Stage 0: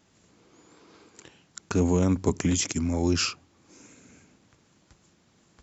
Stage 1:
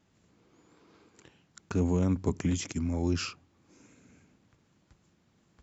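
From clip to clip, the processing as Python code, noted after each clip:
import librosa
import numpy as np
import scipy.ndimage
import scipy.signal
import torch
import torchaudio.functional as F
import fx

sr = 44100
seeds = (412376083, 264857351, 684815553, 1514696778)

y = fx.bass_treble(x, sr, bass_db=4, treble_db=-5)
y = F.gain(torch.from_numpy(y), -6.5).numpy()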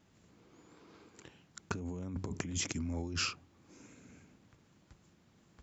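y = fx.over_compress(x, sr, threshold_db=-34.0, ratio=-1.0)
y = F.gain(torch.from_numpy(y), -3.5).numpy()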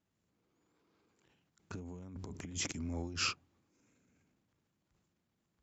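y = fx.transient(x, sr, attack_db=-6, sustain_db=7)
y = fx.upward_expand(y, sr, threshold_db=-46.0, expansion=2.5)
y = F.gain(torch.from_numpy(y), 2.5).numpy()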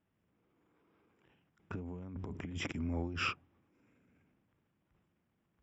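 y = scipy.signal.savgol_filter(x, 25, 4, mode='constant')
y = F.gain(torch.from_numpy(y), 3.0).numpy()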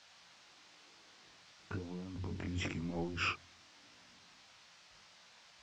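y = fx.dmg_noise_band(x, sr, seeds[0], low_hz=550.0, high_hz=5700.0, level_db=-62.0)
y = fx.chorus_voices(y, sr, voices=2, hz=1.0, base_ms=20, depth_ms=3.0, mix_pct=40)
y = F.gain(torch.from_numpy(y), 3.0).numpy()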